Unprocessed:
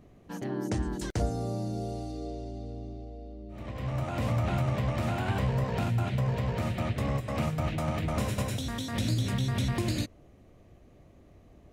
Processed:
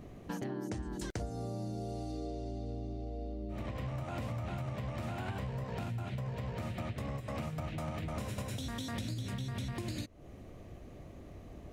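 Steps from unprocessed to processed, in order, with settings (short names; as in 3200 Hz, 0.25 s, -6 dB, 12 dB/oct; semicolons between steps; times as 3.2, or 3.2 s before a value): compressor 8:1, threshold -42 dBFS, peak gain reduction 17.5 dB; gain +6 dB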